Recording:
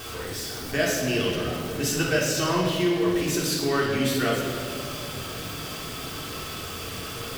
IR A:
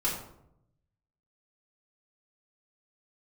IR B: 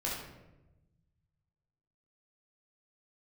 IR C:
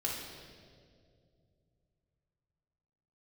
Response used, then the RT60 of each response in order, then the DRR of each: C; 0.75 s, 1.0 s, 2.3 s; -7.0 dB, -5.0 dB, -4.5 dB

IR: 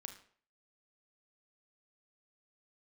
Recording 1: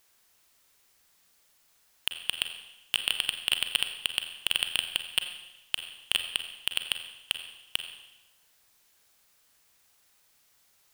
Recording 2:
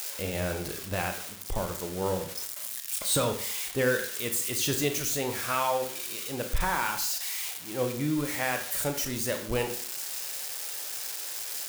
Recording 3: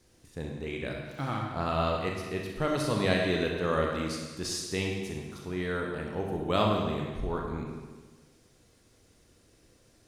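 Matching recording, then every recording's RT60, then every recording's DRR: 2; 1.0 s, 0.50 s, 1.4 s; 6.5 dB, 5.5 dB, -0.5 dB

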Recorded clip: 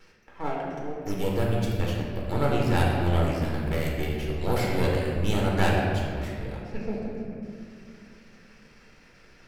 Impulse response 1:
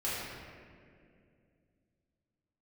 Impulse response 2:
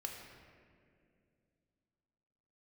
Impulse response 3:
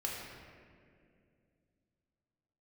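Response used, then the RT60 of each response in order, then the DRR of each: 3; 2.3 s, 2.4 s, 2.3 s; -9.5 dB, 1.0 dB, -3.0 dB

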